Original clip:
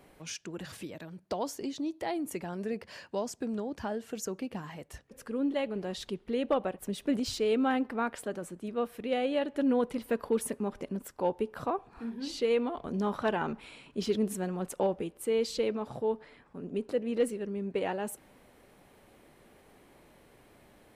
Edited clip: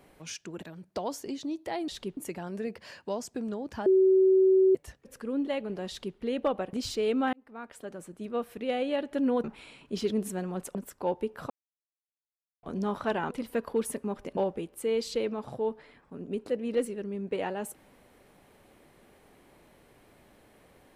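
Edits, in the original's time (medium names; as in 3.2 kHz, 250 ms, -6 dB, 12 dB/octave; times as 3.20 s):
0.62–0.97 s: delete
3.92–4.81 s: bleep 379 Hz -17.5 dBFS
5.94–6.23 s: copy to 2.23 s
6.79–7.16 s: delete
7.76–8.72 s: fade in
9.87–10.93 s: swap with 13.49–14.80 s
11.68–12.81 s: mute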